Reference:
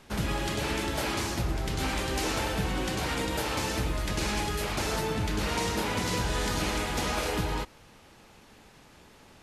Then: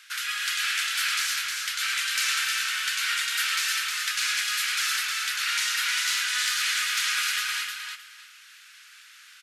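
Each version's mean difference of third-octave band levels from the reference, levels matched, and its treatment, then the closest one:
19.0 dB: elliptic high-pass filter 1,400 Hz, stop band 50 dB
soft clipping −23 dBFS, distortion −27 dB
on a send: repeating echo 310 ms, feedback 19%, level −4.5 dB
on the sum: level +8.5 dB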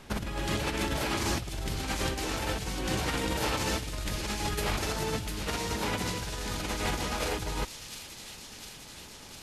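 4.0 dB: low-shelf EQ 130 Hz +3 dB
compressor whose output falls as the input rises −31 dBFS, ratio −0.5
delay with a high-pass on its return 703 ms, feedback 72%, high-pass 3,600 Hz, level −5 dB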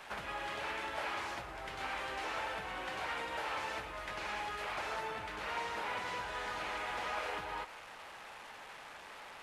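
8.0 dB: linear delta modulator 64 kbit/s, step −39 dBFS
downward compressor, threshold −30 dBFS, peak gain reduction 6 dB
three-way crossover with the lows and the highs turned down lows −20 dB, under 560 Hz, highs −15 dB, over 2,900 Hz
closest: second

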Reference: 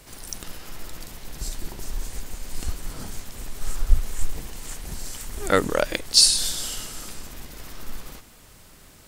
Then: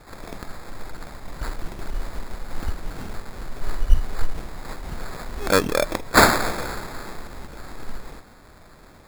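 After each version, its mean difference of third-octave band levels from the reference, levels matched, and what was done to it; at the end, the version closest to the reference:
5.5 dB: decimation without filtering 15×
level +1.5 dB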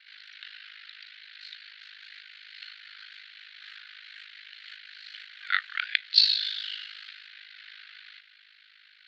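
22.0 dB: Chebyshev band-pass filter 1,500–4,300 Hz, order 4
ring modulation 26 Hz
level +5 dB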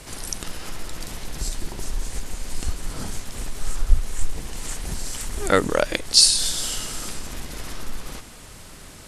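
3.5 dB: Butterworth low-pass 12,000 Hz 36 dB per octave
in parallel at +3 dB: downward compressor, threshold −35 dBFS, peak gain reduction 25.5 dB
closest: third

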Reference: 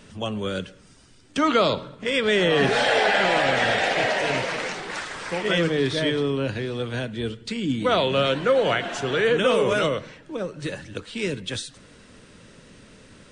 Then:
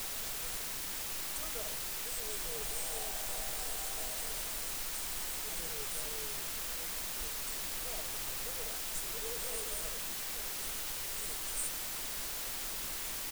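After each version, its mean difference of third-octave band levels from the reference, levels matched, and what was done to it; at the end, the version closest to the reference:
16.5 dB: inverse Chebyshev band-stop filter 110–5,000 Hz, stop band 40 dB
comb filter 6.4 ms, depth 87%
hollow resonant body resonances 410/700 Hz, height 11 dB, ringing for 25 ms
in parallel at −3.5 dB: bit-depth reduction 6 bits, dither triangular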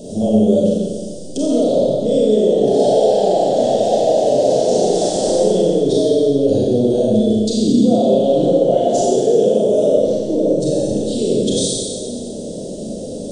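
10.5 dB: drawn EQ curve 110 Hz 0 dB, 200 Hz +9 dB, 380 Hz +12 dB, 680 Hz +14 dB, 1,100 Hz −25 dB, 2,300 Hz −28 dB, 3,300 Hz −4 dB, 6,900 Hz +6 dB
brickwall limiter −21 dBFS, peak gain reduction 22.5 dB
four-comb reverb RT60 1.7 s, combs from 29 ms, DRR −5.5 dB
level +7 dB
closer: second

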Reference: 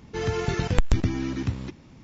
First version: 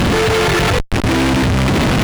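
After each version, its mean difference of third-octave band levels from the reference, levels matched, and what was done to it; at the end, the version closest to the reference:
12.5 dB: linear delta modulator 16 kbit/s, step −19 dBFS
fuzz pedal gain 48 dB, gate −39 dBFS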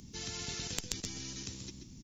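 8.0 dB: drawn EQ curve 200 Hz 0 dB, 590 Hz −23 dB, 1,300 Hz −22 dB, 2,200 Hz −16 dB, 6,100 Hz +5 dB
single-tap delay 132 ms −9.5 dB
every bin compressed towards the loudest bin 4 to 1
level −2.5 dB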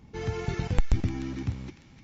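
2.0 dB: low-shelf EQ 240 Hz +6 dB
hollow resonant body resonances 810/2,200 Hz, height 7 dB
on a send: delay with a high-pass on its return 301 ms, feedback 51%, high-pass 1,600 Hz, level −9.5 dB
on the sum: level −8 dB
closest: third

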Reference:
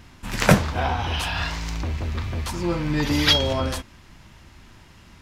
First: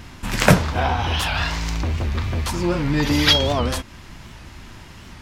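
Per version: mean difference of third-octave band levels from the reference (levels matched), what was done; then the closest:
2.5 dB: in parallel at +2 dB: downward compressor, threshold −34 dBFS, peak gain reduction 22.5 dB
on the sum: wow of a warped record 78 rpm, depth 160 cents
level +1 dB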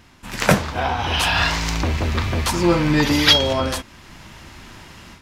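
3.5 dB: low-shelf EQ 150 Hz −7 dB
automatic gain control gain up to 10.5 dB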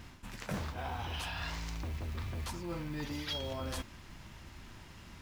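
7.5 dB: reversed playback
downward compressor 8 to 1, threshold −33 dBFS, peak gain reduction 23 dB
reversed playback
noise that follows the level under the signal 26 dB
level −3 dB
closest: first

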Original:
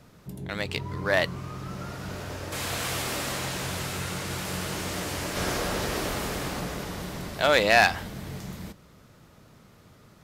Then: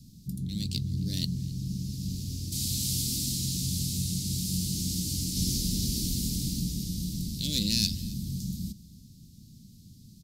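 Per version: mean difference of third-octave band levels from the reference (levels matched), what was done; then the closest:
14.0 dB: elliptic band-stop filter 230–4,400 Hz, stop band 80 dB
single-tap delay 266 ms −22 dB
level +5 dB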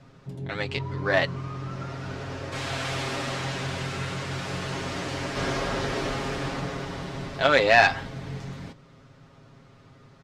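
4.5 dB: high-frequency loss of the air 100 metres
comb filter 7.4 ms, depth 75%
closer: second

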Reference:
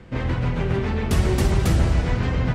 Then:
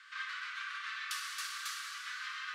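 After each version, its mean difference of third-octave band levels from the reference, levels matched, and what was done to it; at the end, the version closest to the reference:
24.5 dB: downward compressor 6 to 1, threshold −26 dBFS, peak gain reduction 12 dB
Chebyshev high-pass with heavy ripple 1,100 Hz, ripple 6 dB
dense smooth reverb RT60 1.8 s, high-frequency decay 0.9×, DRR 0 dB
level +2.5 dB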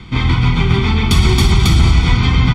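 3.5 dB: parametric band 3,600 Hz +12 dB 1.2 octaves
comb filter 0.9 ms, depth 92%
boost into a limiter +6 dB
level −1 dB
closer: second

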